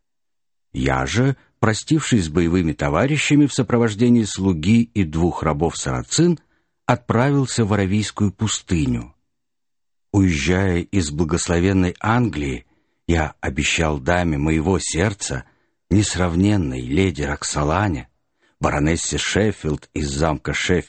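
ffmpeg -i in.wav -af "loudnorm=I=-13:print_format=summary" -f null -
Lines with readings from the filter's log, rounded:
Input Integrated:    -19.9 LUFS
Input True Peak:      -1.4 dBTP
Input LRA:             3.4 LU
Input Threshold:     -30.2 LUFS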